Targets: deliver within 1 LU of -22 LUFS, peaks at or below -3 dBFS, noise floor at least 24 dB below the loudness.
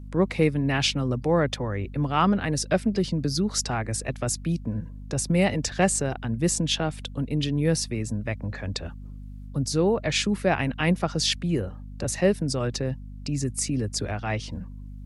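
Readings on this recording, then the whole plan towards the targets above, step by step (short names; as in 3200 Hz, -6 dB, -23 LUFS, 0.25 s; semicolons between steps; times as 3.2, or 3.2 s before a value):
hum 50 Hz; harmonics up to 250 Hz; hum level -37 dBFS; loudness -26.0 LUFS; peak -8.5 dBFS; loudness target -22.0 LUFS
-> de-hum 50 Hz, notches 5; gain +4 dB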